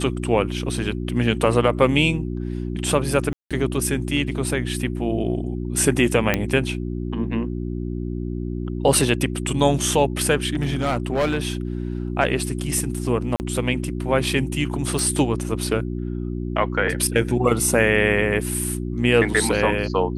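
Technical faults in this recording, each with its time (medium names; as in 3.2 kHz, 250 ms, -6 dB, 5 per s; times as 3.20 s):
hum 60 Hz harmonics 6 -27 dBFS
3.33–3.51 s: dropout 176 ms
6.34 s: pop -5 dBFS
10.53–11.52 s: clipped -16.5 dBFS
13.36–13.40 s: dropout 39 ms
14.99 s: pop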